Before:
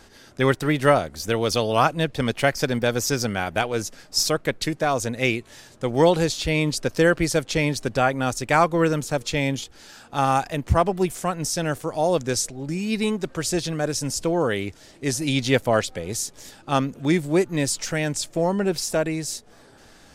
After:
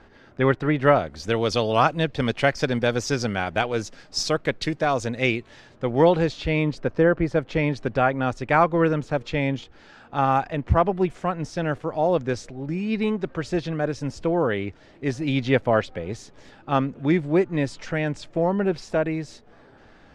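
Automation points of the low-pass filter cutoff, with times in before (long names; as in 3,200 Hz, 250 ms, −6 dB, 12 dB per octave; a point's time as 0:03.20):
0:00.79 2,200 Hz
0:01.29 4,700 Hz
0:05.18 4,700 Hz
0:05.84 2,700 Hz
0:06.52 2,700 Hz
0:07.12 1,300 Hz
0:07.70 2,500 Hz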